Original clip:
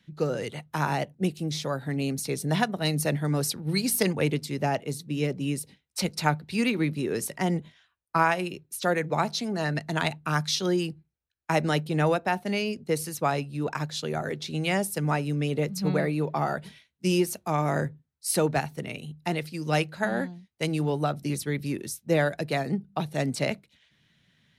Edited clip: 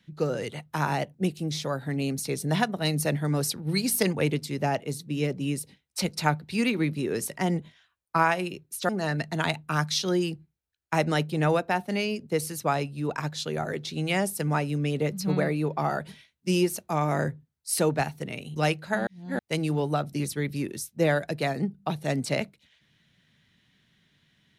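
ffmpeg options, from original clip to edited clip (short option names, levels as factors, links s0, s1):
-filter_complex "[0:a]asplit=5[s0][s1][s2][s3][s4];[s0]atrim=end=8.892[s5];[s1]atrim=start=9.458:end=19.132[s6];[s2]atrim=start=19.658:end=20.172[s7];[s3]atrim=start=20.168:end=20.492,asetpts=PTS-STARTPTS,areverse[s8];[s4]atrim=start=20.488[s9];[s5][s6]acrossfade=d=0.004:c1=hsin:c2=hsin[s10];[s10][s7]acrossfade=d=0.004:c1=hsin:c2=hsin[s11];[s11][s8]acrossfade=d=0.004:c1=hsin:c2=hsin[s12];[s12][s9]acrossfade=d=0.004:c1=hsin:c2=hsin"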